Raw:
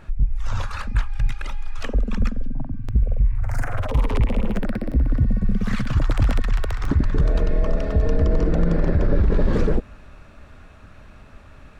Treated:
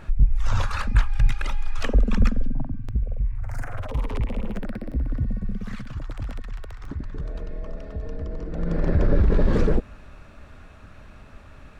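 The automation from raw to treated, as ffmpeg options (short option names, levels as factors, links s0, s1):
-af "volume=5.62,afade=t=out:st=2.39:d=0.61:silence=0.354813,afade=t=out:st=5.29:d=0.66:silence=0.473151,afade=t=in:st=8.5:d=0.5:silence=0.237137"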